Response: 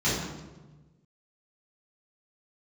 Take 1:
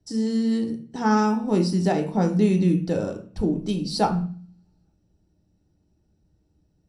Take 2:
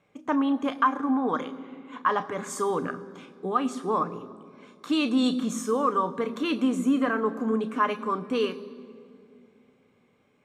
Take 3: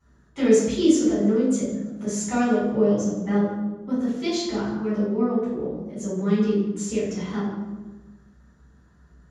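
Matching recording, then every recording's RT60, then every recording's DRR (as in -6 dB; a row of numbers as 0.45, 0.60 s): 3; 0.45, 2.4, 1.2 s; 3.0, 9.0, -11.5 dB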